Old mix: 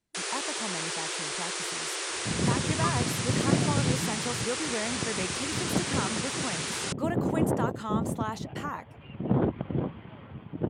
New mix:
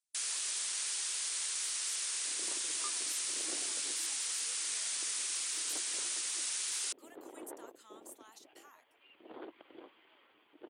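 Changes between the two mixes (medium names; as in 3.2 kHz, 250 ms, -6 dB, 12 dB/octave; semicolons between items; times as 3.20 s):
speech -9.0 dB; second sound: add resonant low shelf 230 Hz -11.5 dB, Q 3; master: add differentiator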